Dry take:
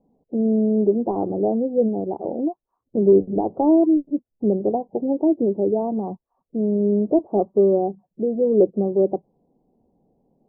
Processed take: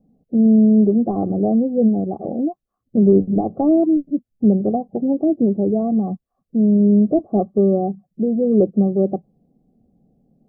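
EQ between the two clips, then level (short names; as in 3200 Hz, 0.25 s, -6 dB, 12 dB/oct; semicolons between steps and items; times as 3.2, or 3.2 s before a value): dynamic EQ 1000 Hz, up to +6 dB, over -38 dBFS, Q 1.8; Butterworth band-stop 930 Hz, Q 3.4; resonant low shelf 280 Hz +6.5 dB, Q 1.5; 0.0 dB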